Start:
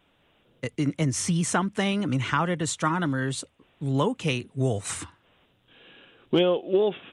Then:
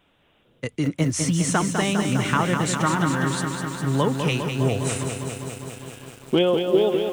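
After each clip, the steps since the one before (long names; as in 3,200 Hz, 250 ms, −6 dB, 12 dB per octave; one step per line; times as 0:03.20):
feedback echo at a low word length 202 ms, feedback 80%, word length 8 bits, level −6 dB
level +2 dB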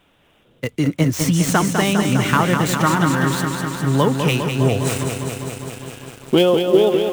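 gap after every zero crossing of 0.05 ms
level +5 dB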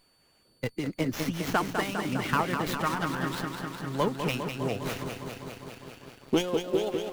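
harmonic and percussive parts rebalanced harmonic −12 dB
steady tone 4,500 Hz −53 dBFS
windowed peak hold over 5 samples
level −7 dB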